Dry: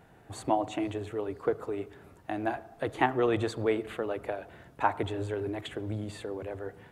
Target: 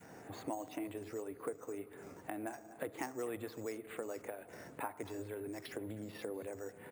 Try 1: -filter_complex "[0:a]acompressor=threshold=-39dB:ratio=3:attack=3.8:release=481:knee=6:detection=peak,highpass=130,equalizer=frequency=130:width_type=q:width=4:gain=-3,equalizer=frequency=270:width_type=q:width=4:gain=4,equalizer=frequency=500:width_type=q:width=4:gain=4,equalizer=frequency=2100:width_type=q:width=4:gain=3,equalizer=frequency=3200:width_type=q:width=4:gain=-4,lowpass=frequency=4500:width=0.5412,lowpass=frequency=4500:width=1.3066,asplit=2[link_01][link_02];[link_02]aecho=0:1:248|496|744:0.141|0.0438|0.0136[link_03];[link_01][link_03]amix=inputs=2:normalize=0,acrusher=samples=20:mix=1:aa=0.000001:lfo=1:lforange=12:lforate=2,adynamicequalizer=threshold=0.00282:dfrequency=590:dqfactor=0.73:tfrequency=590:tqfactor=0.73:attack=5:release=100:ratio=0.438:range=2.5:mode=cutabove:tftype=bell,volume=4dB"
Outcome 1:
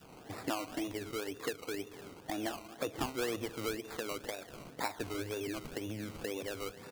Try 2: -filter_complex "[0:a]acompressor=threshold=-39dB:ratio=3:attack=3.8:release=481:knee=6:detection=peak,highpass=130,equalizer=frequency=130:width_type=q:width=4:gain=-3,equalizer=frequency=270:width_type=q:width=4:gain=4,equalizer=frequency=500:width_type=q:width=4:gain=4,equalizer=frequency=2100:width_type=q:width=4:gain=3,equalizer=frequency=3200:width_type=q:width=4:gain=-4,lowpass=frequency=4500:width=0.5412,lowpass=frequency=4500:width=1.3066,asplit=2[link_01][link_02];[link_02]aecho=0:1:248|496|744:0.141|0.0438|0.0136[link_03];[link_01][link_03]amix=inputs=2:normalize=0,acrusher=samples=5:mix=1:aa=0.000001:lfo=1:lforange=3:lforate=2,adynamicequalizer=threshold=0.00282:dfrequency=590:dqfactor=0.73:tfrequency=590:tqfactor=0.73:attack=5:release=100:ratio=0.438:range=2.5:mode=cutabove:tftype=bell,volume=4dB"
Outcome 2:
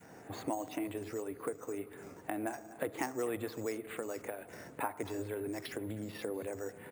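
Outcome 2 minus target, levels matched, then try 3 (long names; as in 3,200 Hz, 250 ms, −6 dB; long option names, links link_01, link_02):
downward compressor: peak gain reduction −5 dB
-filter_complex "[0:a]acompressor=threshold=-46.5dB:ratio=3:attack=3.8:release=481:knee=6:detection=peak,highpass=130,equalizer=frequency=130:width_type=q:width=4:gain=-3,equalizer=frequency=270:width_type=q:width=4:gain=4,equalizer=frequency=500:width_type=q:width=4:gain=4,equalizer=frequency=2100:width_type=q:width=4:gain=3,equalizer=frequency=3200:width_type=q:width=4:gain=-4,lowpass=frequency=4500:width=0.5412,lowpass=frequency=4500:width=1.3066,asplit=2[link_01][link_02];[link_02]aecho=0:1:248|496|744:0.141|0.0438|0.0136[link_03];[link_01][link_03]amix=inputs=2:normalize=0,acrusher=samples=5:mix=1:aa=0.000001:lfo=1:lforange=3:lforate=2,adynamicequalizer=threshold=0.00282:dfrequency=590:dqfactor=0.73:tfrequency=590:tqfactor=0.73:attack=5:release=100:ratio=0.438:range=2.5:mode=cutabove:tftype=bell,volume=4dB"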